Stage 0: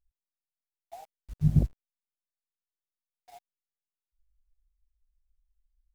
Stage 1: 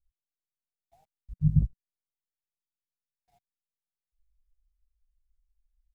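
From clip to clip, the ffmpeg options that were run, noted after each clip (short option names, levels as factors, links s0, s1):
-af "firequalizer=gain_entry='entry(180,0);entry(260,-13);entry(580,-19)':delay=0.05:min_phase=1"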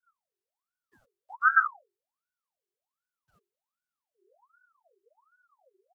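-af "aecho=1:1:6.9:0.7,afreqshift=-22,aeval=exprs='val(0)*sin(2*PI*930*n/s+930*0.6/1.3*sin(2*PI*1.3*n/s))':c=same"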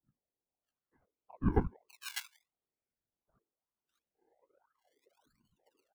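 -filter_complex "[0:a]afftfilt=real='hypot(re,im)*cos(2*PI*random(0))':imag='hypot(re,im)*sin(2*PI*random(1))':win_size=512:overlap=0.75,acrusher=samples=24:mix=1:aa=0.000001:lfo=1:lforange=24:lforate=0.77,acrossover=split=1500[s0][s1];[s1]adelay=600[s2];[s0][s2]amix=inputs=2:normalize=0"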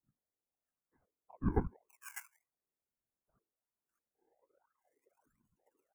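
-af "asuperstop=centerf=3800:order=4:qfactor=0.82,volume=0.708"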